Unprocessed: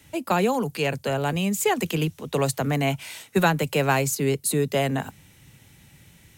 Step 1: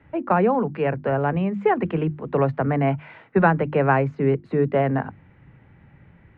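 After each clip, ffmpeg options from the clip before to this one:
-af "lowpass=f=1.8k:w=0.5412,lowpass=f=1.8k:w=1.3066,bandreject=f=50:t=h:w=6,bandreject=f=100:t=h:w=6,bandreject=f=150:t=h:w=6,bandreject=f=200:t=h:w=6,bandreject=f=250:t=h:w=6,bandreject=f=300:t=h:w=6,bandreject=f=350:t=h:w=6,volume=3.5dB"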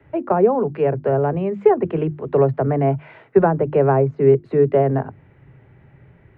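-filter_complex "[0:a]equalizer=f=125:t=o:w=0.33:g=6,equalizer=f=200:t=o:w=0.33:g=-4,equalizer=f=400:t=o:w=0.33:g=9,equalizer=f=630:t=o:w=0.33:g=5,acrossover=split=220|1200[a][b][c];[c]acompressor=threshold=-40dB:ratio=6[d];[a][b][d]amix=inputs=3:normalize=0"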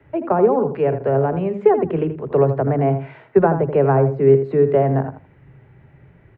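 -filter_complex "[0:a]asplit=2[a][b];[b]adelay=81,lowpass=f=2.4k:p=1,volume=-9dB,asplit=2[c][d];[d]adelay=81,lowpass=f=2.4k:p=1,volume=0.22,asplit=2[e][f];[f]adelay=81,lowpass=f=2.4k:p=1,volume=0.22[g];[a][c][e][g]amix=inputs=4:normalize=0"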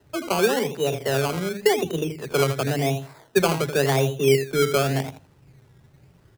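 -af "acrusher=samples=19:mix=1:aa=0.000001:lfo=1:lforange=11.4:lforate=0.91,volume=-5.5dB"

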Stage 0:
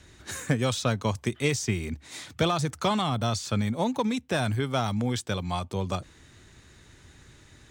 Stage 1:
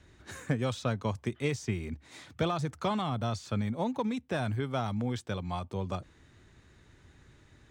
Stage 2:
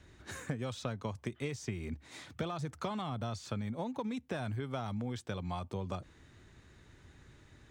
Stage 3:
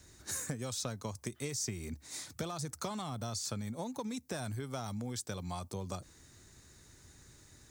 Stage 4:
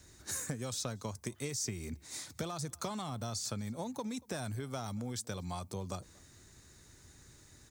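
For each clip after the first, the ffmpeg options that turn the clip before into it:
-af "highshelf=f=3.5k:g=-10,volume=-4.5dB"
-af "acompressor=threshold=-34dB:ratio=5"
-af "aexciter=amount=5.8:drive=4.7:freq=4.4k,volume=-2dB"
-filter_complex "[0:a]asplit=2[a][b];[b]adelay=233.2,volume=-25dB,highshelf=f=4k:g=-5.25[c];[a][c]amix=inputs=2:normalize=0"

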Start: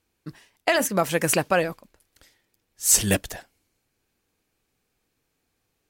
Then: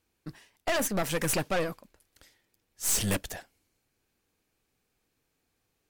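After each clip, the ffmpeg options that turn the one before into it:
-af "aeval=exprs='(tanh(15.8*val(0)+0.55)-tanh(0.55))/15.8':c=same"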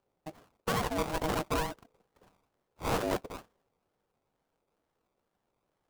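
-af "acrusher=samples=29:mix=1:aa=0.000001:lfo=1:lforange=17.4:lforate=2.2,aeval=exprs='val(0)*sin(2*PI*470*n/s)':c=same"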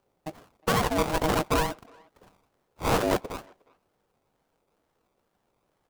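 -filter_complex "[0:a]asplit=2[a][b];[b]adelay=360,highpass=300,lowpass=3.4k,asoftclip=type=hard:threshold=-30.5dB,volume=-25dB[c];[a][c]amix=inputs=2:normalize=0,volume=6.5dB"

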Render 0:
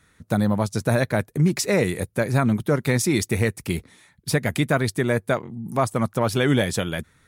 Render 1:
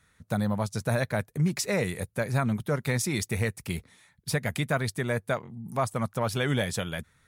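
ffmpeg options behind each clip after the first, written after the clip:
-af "equalizer=f=320:t=o:w=0.79:g=-7,volume=-5dB"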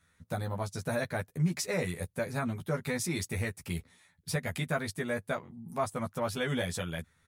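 -filter_complex "[0:a]asplit=2[a][b];[b]adelay=12,volume=-2dB[c];[a][c]amix=inputs=2:normalize=0,volume=-6.5dB"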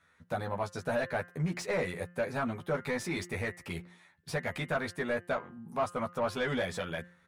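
-filter_complex "[0:a]asplit=2[a][b];[b]highpass=f=720:p=1,volume=17dB,asoftclip=type=tanh:threshold=-16.5dB[c];[a][c]amix=inputs=2:normalize=0,lowpass=f=1.3k:p=1,volume=-6dB,bandreject=f=176:t=h:w=4,bandreject=f=352:t=h:w=4,bandreject=f=528:t=h:w=4,bandreject=f=704:t=h:w=4,bandreject=f=880:t=h:w=4,bandreject=f=1.056k:t=h:w=4,bandreject=f=1.232k:t=h:w=4,bandreject=f=1.408k:t=h:w=4,bandreject=f=1.584k:t=h:w=4,bandreject=f=1.76k:t=h:w=4,bandreject=f=1.936k:t=h:w=4,bandreject=f=2.112k:t=h:w=4,bandreject=f=2.288k:t=h:w=4,bandreject=f=2.464k:t=h:w=4,bandreject=f=2.64k:t=h:w=4,bandreject=f=2.816k:t=h:w=4,bandreject=f=2.992k:t=h:w=4,volume=-2.5dB"

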